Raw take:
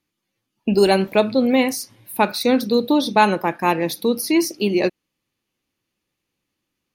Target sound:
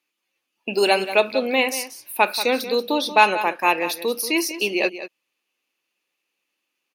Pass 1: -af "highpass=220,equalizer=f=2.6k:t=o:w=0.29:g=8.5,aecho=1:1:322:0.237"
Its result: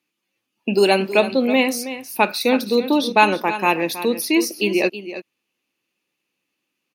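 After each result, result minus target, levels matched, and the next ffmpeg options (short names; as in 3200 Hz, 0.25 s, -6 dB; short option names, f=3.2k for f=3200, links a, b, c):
echo 0.138 s late; 250 Hz band +5.5 dB
-af "highpass=220,equalizer=f=2.6k:t=o:w=0.29:g=8.5,aecho=1:1:184:0.237"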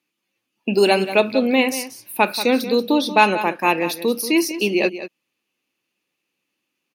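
250 Hz band +5.5 dB
-af "highpass=460,equalizer=f=2.6k:t=o:w=0.29:g=8.5,aecho=1:1:184:0.237"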